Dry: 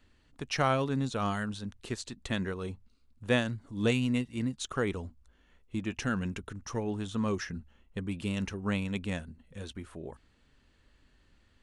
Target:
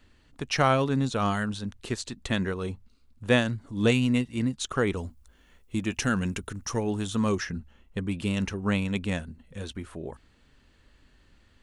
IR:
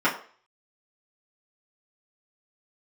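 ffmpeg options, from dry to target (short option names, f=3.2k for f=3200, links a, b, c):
-filter_complex "[0:a]asettb=1/sr,asplit=3[a][b][c];[a]atrim=end=4.974[d];[b]atrim=start=4.97:end=7.35,asetpts=PTS-STARTPTS,afade=t=in:d=0.004:c=qsin,afade=t=out:st=2.376:d=0.004:c=qsin,highshelf=f=6.9k:g=11.5[e];[c]atrim=start=7.346[f];[d][e]acrossfade=d=0.004:c1=hsin:c2=qsin[g];[g][f]acrossfade=d=0.004:c1=qsin:c2=hsin,volume=5dB"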